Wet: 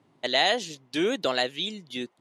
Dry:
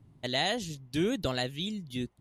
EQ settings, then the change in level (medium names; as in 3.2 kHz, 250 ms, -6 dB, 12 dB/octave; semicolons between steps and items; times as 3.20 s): high-pass 400 Hz 12 dB/octave; distance through air 56 m; +8.0 dB